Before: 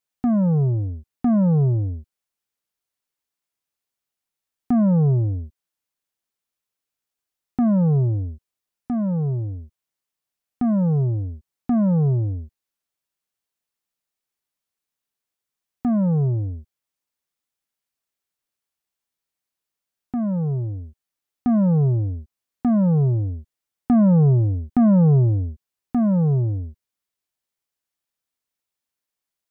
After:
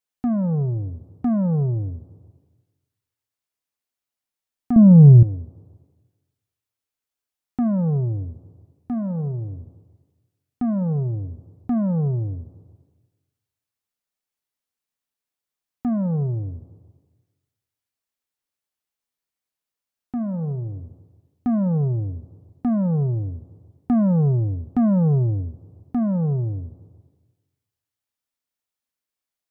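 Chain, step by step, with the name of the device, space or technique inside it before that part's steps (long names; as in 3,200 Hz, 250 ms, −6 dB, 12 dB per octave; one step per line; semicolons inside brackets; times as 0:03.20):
compressed reverb return (on a send at −7 dB: convolution reverb RT60 1.3 s, pre-delay 3 ms + downward compressor, threshold −28 dBFS, peak gain reduction 18 dB)
0:04.76–0:05.23: on the sum: spectral tilt −4.5 dB per octave
level −3 dB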